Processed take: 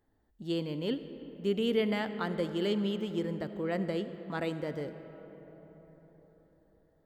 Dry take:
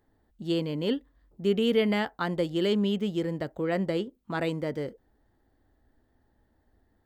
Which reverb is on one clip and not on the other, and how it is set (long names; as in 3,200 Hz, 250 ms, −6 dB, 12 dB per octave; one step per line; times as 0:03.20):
comb and all-pass reverb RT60 4.8 s, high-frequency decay 0.4×, pre-delay 30 ms, DRR 10.5 dB
level −5 dB